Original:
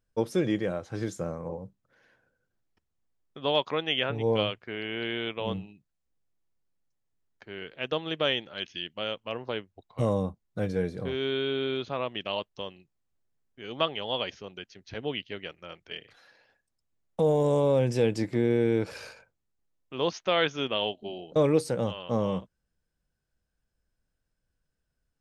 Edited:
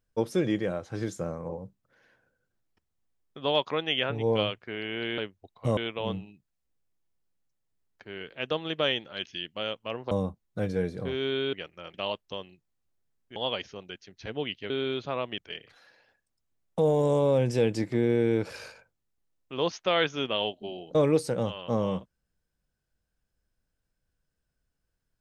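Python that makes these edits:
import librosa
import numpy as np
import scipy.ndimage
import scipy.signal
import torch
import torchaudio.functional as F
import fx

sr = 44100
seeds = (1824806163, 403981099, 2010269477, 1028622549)

y = fx.edit(x, sr, fx.move(start_s=9.52, length_s=0.59, to_s=5.18),
    fx.swap(start_s=11.53, length_s=0.68, other_s=15.38, other_length_s=0.41),
    fx.cut(start_s=13.63, length_s=0.41), tone=tone)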